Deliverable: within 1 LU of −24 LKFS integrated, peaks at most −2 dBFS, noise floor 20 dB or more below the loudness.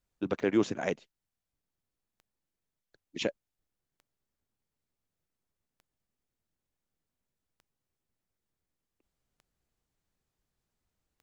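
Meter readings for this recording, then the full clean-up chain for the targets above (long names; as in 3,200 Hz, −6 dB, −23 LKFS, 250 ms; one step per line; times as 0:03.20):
number of clicks 7; integrated loudness −32.0 LKFS; sample peak −14.5 dBFS; target loudness −24.0 LKFS
→ click removal
level +8 dB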